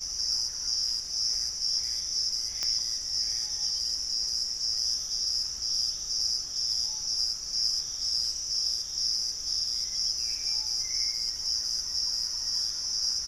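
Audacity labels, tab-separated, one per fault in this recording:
2.630000	2.630000	pop -16 dBFS

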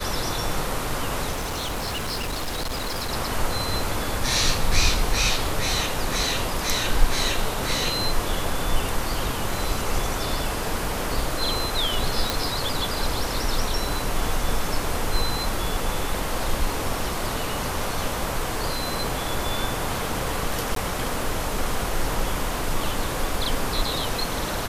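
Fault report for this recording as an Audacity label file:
1.310000	3.110000	clipped -24.5 dBFS
12.300000	12.300000	pop
20.750000	20.760000	dropout 13 ms

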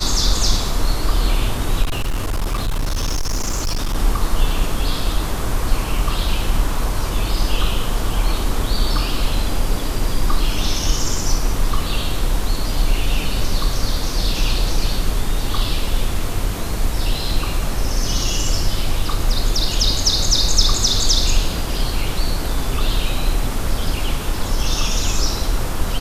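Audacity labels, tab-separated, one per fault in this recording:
1.820000	3.960000	clipped -16.5 dBFS

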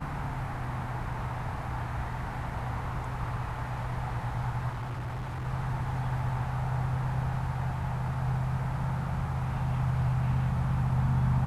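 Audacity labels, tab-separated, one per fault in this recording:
4.700000	5.460000	clipped -32 dBFS

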